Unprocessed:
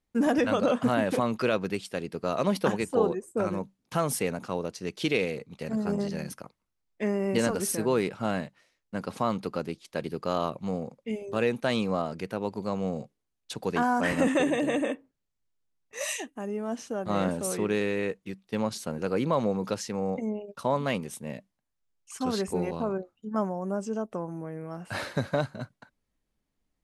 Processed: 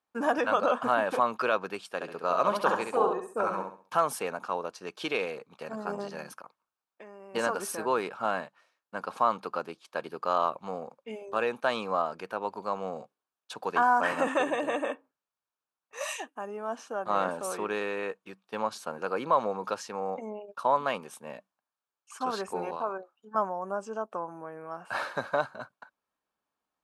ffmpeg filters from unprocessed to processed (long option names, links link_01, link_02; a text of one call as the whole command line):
ffmpeg -i in.wav -filter_complex "[0:a]asettb=1/sr,asplit=3[link_01][link_02][link_03];[link_01]atrim=end=1.944[link_04];[link_02]atrim=start=1.94:end=4,asetpts=PTS-STARTPTS,afade=type=in:duration=0.004:curve=qsin,afade=type=out:start_time=2.056:duration=0.004:curve=qsin,aecho=1:1:67|134|201|268:0.562|0.18|0.0576|0.0184,atrim=end_sample=90846[link_05];[link_03]atrim=start=3.996[link_06];[link_04][link_05]acrossfade=duration=0.004:curve1=hsin:curve2=qsin[link_07];[link_07][link_06]acrossfade=duration=0.004:curve1=qsin:curve2=hsin,asplit=3[link_08][link_09][link_10];[link_08]afade=type=out:start_time=6.37:duration=0.02[link_11];[link_09]acompressor=threshold=-41dB:ratio=6:attack=3.2:release=140:knee=1:detection=peak,afade=type=in:start_time=6.37:duration=0.02,afade=type=out:start_time=7.34:duration=0.02[link_12];[link_10]afade=type=in:start_time=7.34:duration=0.02[link_13];[link_11][link_12][link_13]amix=inputs=3:normalize=0,asettb=1/sr,asplit=3[link_14][link_15][link_16];[link_14]atrim=end=22.764[link_17];[link_15]atrim=start=22.76:end=23.35,asetpts=PTS-STARTPTS,afade=type=in:duration=0.004:curve=qsin,afade=type=out:start_time=0.586:duration=0.004:curve=qsin,highpass=frequency=370:poles=1[link_18];[link_16]atrim=start=23.346[link_19];[link_17][link_18]acrossfade=duration=0.004:curve1=hsin:curve2=qsin[link_20];[link_20][link_19]acrossfade=duration=0.004:curve1=qsin:curve2=hsin,highpass=frequency=390:poles=1,equalizer=frequency=1100:width=0.63:gain=14,bandreject=frequency=2000:width=5.8,volume=-7dB" out.wav